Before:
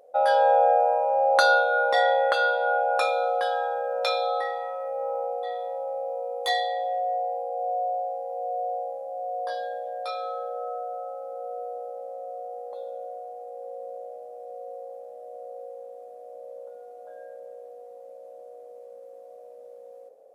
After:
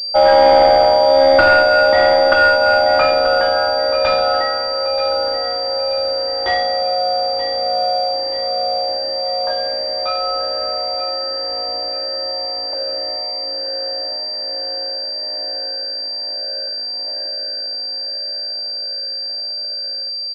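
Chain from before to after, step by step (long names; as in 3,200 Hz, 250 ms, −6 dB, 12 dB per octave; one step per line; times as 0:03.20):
one-sided soft clipper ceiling −14 dBFS
mains-hum notches 60/120/180/240/300/360/420/480 Hz
leveller curve on the samples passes 2
comb filter 3.3 ms, depth 75%
repeating echo 931 ms, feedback 44%, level −11.5 dB
switching amplifier with a slow clock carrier 4,700 Hz
level +3.5 dB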